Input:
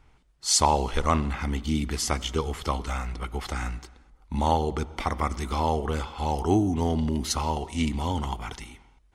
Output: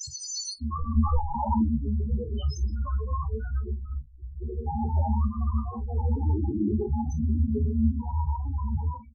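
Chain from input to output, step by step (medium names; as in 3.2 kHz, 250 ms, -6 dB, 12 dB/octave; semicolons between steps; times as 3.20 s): slices played last to first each 88 ms, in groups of 7; gated-style reverb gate 380 ms rising, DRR -5.5 dB; loudest bins only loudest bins 4; early reflections 14 ms -5.5 dB, 43 ms -15.5 dB; trim -5 dB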